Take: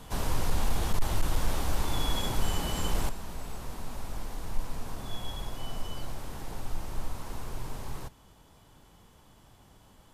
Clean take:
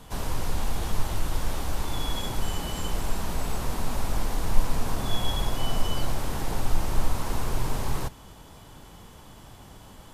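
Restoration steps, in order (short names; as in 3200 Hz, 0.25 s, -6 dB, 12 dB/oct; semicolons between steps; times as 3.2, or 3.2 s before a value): clip repair -16.5 dBFS; gain 0 dB, from 3.09 s +10 dB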